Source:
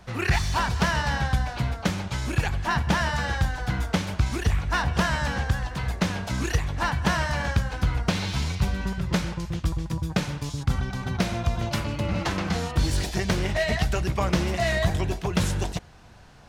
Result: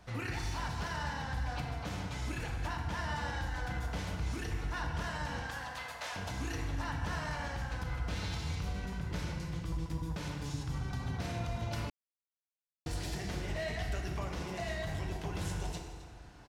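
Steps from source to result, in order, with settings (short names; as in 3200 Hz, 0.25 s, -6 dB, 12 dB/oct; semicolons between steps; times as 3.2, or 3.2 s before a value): 5.42–6.16 HPF 590 Hz 24 dB/oct; limiter -23.5 dBFS, peak gain reduction 12 dB; echo 0.261 s -15.5 dB; FDN reverb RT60 1.9 s, low-frequency decay 1.05×, high-frequency decay 0.6×, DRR 1.5 dB; 11.9–12.86 mute; gain -8 dB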